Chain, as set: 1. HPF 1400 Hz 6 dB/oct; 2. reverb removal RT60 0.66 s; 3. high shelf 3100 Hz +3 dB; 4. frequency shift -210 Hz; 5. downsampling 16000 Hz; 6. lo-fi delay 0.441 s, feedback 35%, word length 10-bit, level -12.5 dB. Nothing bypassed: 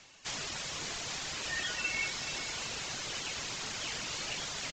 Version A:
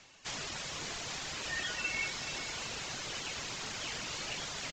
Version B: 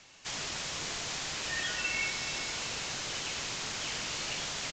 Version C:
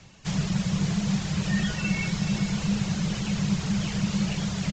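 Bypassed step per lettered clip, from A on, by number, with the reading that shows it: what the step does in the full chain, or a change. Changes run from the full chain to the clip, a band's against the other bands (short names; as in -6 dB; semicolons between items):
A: 3, 8 kHz band -2.0 dB; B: 2, loudness change +2.0 LU; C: 1, 250 Hz band +23.5 dB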